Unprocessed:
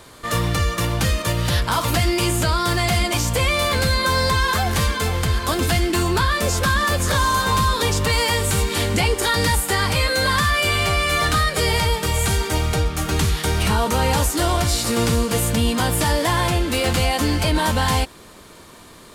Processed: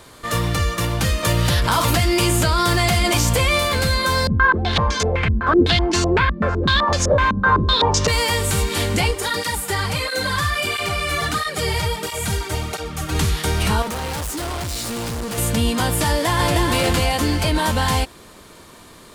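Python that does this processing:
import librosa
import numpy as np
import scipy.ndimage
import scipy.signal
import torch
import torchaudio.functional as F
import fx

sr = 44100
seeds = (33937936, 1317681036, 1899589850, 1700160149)

y = fx.env_flatten(x, sr, amount_pct=70, at=(1.22, 3.58), fade=0.02)
y = fx.filter_held_lowpass(y, sr, hz=7.9, low_hz=220.0, high_hz=6000.0, at=(4.27, 8.08))
y = fx.flanger_cancel(y, sr, hz=1.5, depth_ms=5.0, at=(9.11, 13.15))
y = fx.clip_hard(y, sr, threshold_db=-24.5, at=(13.82, 15.38))
y = fx.echo_throw(y, sr, start_s=16.08, length_s=0.6, ms=310, feedback_pct=35, wet_db=-3.0)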